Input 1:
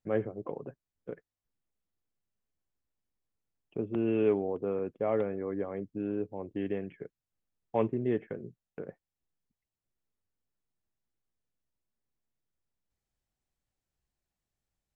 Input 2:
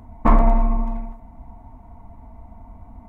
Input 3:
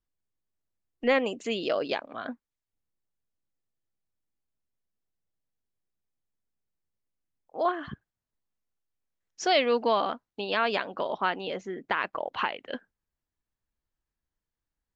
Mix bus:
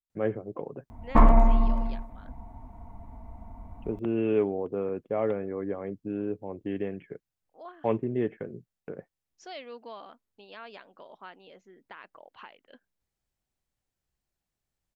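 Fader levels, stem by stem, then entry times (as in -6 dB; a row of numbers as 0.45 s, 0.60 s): +1.5 dB, -2.5 dB, -18.5 dB; 0.10 s, 0.90 s, 0.00 s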